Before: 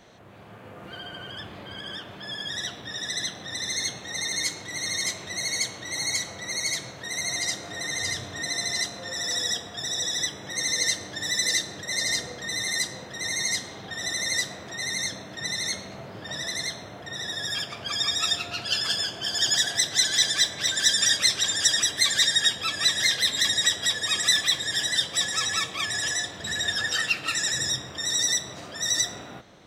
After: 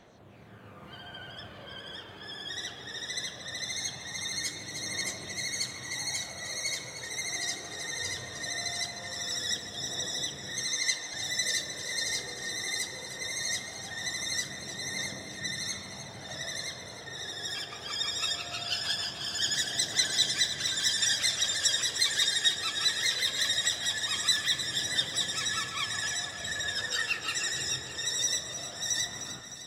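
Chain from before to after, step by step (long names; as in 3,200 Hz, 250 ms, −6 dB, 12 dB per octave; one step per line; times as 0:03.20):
0:10.66–0:11.14: meter weighting curve A
phase shifter 0.2 Hz, delay 2.7 ms, feedback 37%
delay that swaps between a low-pass and a high-pass 153 ms, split 1,900 Hz, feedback 78%, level −8 dB
level −6.5 dB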